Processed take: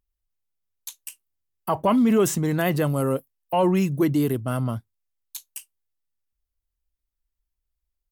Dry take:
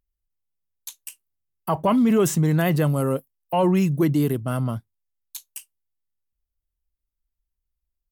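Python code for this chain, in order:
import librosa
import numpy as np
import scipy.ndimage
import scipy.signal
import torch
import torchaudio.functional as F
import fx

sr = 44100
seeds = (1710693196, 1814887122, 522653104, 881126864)

y = fx.peak_eq(x, sr, hz=160.0, db=-7.0, octaves=0.28)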